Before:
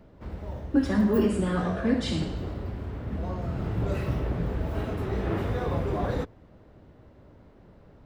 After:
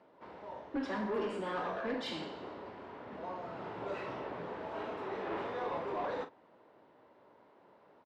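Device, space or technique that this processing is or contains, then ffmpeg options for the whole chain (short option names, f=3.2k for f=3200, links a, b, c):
intercom: -filter_complex "[0:a]highpass=410,lowpass=4.1k,equalizer=f=950:t=o:w=0.35:g=7,asoftclip=type=tanh:threshold=-25.5dB,asplit=2[a][b];[b]adelay=42,volume=-11dB[c];[a][c]amix=inputs=2:normalize=0,volume=-4dB"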